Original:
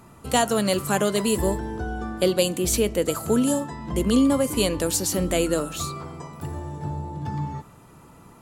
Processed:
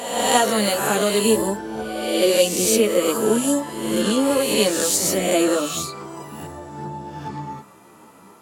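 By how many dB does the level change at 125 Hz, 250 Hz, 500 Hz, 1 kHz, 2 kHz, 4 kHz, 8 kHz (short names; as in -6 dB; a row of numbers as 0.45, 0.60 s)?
-4.5, +1.5, +4.5, +4.5, +5.5, +6.0, +6.0 dB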